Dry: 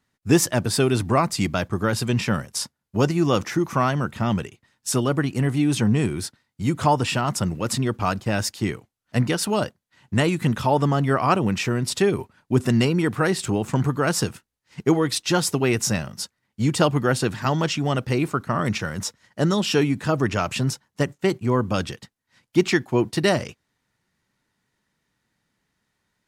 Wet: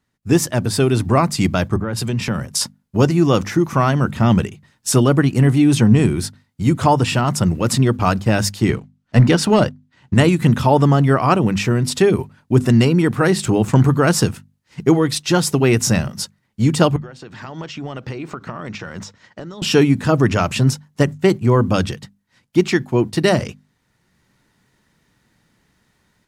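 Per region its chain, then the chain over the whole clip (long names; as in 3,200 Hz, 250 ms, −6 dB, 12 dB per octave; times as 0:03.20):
0:01.76–0:02.61: downward compressor 5 to 1, threshold −26 dBFS + multiband upward and downward expander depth 70%
0:08.69–0:10.14: high-frequency loss of the air 52 metres + leveller curve on the samples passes 1
0:16.96–0:19.62: low-shelf EQ 200 Hz −10 dB + downward compressor 8 to 1, threshold −38 dBFS + moving average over 4 samples
whole clip: low-shelf EQ 340 Hz +5.5 dB; mains-hum notches 50/100/150/200/250 Hz; automatic gain control; level −1 dB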